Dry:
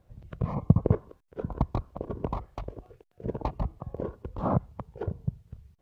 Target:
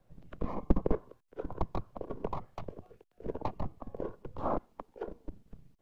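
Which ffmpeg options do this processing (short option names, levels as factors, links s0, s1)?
-filter_complex "[0:a]asettb=1/sr,asplit=3[s0][s1][s2];[s0]atrim=end=4.544[s3];[s1]atrim=start=4.54:end=5.29,asetpts=PTS-STARTPTS,afade=t=in:d=0.004:c=qsin,afade=t=out:st=0.746:d=0.004:c=qsin,highpass=180[s4];[s2]atrim=start=5.286[s5];[s3][s4]acrossfade=d=0.004:c1=hsin:c2=qsin[s6];[s6][s5]acrossfade=d=0.004:c1=qsin:c2=hsin,acrossover=split=240|610|1000[s7][s8][s9][s10];[s7]aeval=exprs='abs(val(0))':c=same[s11];[s11][s8][s9][s10]amix=inputs=4:normalize=0,volume=0.708"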